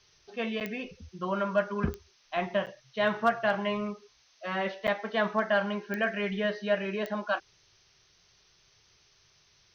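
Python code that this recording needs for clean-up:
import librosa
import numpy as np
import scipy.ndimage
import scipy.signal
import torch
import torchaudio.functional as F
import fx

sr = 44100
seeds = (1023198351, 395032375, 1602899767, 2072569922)

y = fx.fix_declip(x, sr, threshold_db=-15.5)
y = fx.fix_declick_ar(y, sr, threshold=10.0)
y = fx.fix_interpolate(y, sr, at_s=(0.6, 2.66, 4.87), length_ms=8.2)
y = fx.noise_reduce(y, sr, print_start_s=7.79, print_end_s=8.29, reduce_db=11.0)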